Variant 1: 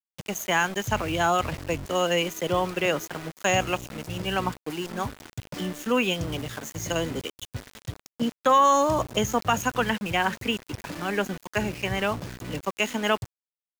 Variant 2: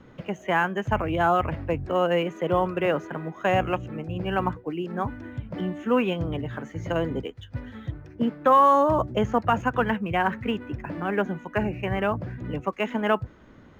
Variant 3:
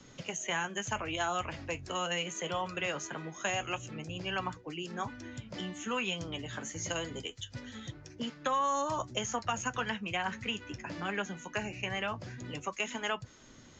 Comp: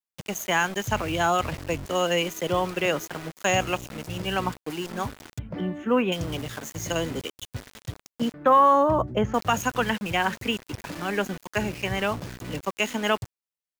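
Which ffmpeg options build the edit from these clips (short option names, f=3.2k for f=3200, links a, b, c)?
-filter_complex "[1:a]asplit=2[a][b];[0:a]asplit=3[c][d][e];[c]atrim=end=5.392[f];[a]atrim=start=5.388:end=6.122[g];[d]atrim=start=6.118:end=8.342[h];[b]atrim=start=8.338:end=9.342[i];[e]atrim=start=9.338[j];[f][g]acrossfade=d=0.004:c1=hsin:c2=hsin[k];[k][h]acrossfade=d=0.004:c1=hsin:c2=hsin[l];[l][i]acrossfade=d=0.004:c1=hsin:c2=hsin[m];[m][j]acrossfade=d=0.004:c1=hsin:c2=hsin"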